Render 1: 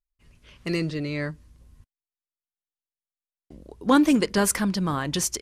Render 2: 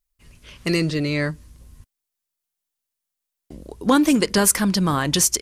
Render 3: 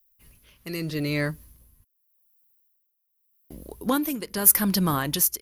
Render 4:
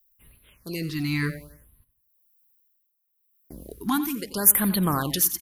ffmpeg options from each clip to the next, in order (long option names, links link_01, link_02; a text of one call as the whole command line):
ffmpeg -i in.wav -af "highshelf=frequency=5300:gain=8,acompressor=threshold=-23dB:ratio=2,volume=6.5dB" out.wav
ffmpeg -i in.wav -af "aexciter=amount=8.4:drive=7.5:freq=11000,tremolo=f=0.83:d=0.74,volume=-3dB" out.wav
ffmpeg -i in.wav -af "aecho=1:1:89|178|267|356:0.211|0.0803|0.0305|0.0116,afftfilt=real='re*(1-between(b*sr/1024,470*pow(6600/470,0.5+0.5*sin(2*PI*0.69*pts/sr))/1.41,470*pow(6600/470,0.5+0.5*sin(2*PI*0.69*pts/sr))*1.41))':imag='im*(1-between(b*sr/1024,470*pow(6600/470,0.5+0.5*sin(2*PI*0.69*pts/sr))/1.41,470*pow(6600/470,0.5+0.5*sin(2*PI*0.69*pts/sr))*1.41))':win_size=1024:overlap=0.75" out.wav